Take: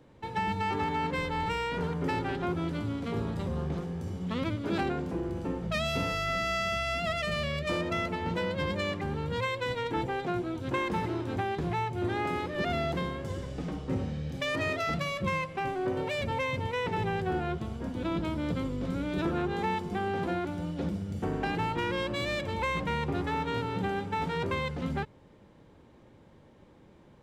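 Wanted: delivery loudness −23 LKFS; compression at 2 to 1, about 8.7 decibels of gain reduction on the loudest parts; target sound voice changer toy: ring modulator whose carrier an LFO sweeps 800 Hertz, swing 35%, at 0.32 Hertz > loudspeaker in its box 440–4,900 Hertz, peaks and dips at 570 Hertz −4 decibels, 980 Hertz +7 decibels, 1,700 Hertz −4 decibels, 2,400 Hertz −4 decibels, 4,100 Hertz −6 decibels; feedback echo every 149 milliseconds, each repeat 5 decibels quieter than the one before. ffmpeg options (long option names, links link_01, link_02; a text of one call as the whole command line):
ffmpeg -i in.wav -af "acompressor=threshold=-43dB:ratio=2,aecho=1:1:149|298|447|596|745|894|1043:0.562|0.315|0.176|0.0988|0.0553|0.031|0.0173,aeval=exprs='val(0)*sin(2*PI*800*n/s+800*0.35/0.32*sin(2*PI*0.32*n/s))':channel_layout=same,highpass=440,equalizer=frequency=570:width_type=q:width=4:gain=-4,equalizer=frequency=980:width_type=q:width=4:gain=7,equalizer=frequency=1700:width_type=q:width=4:gain=-4,equalizer=frequency=2400:width_type=q:width=4:gain=-4,equalizer=frequency=4100:width_type=q:width=4:gain=-6,lowpass=frequency=4900:width=0.5412,lowpass=frequency=4900:width=1.3066,volume=18dB" out.wav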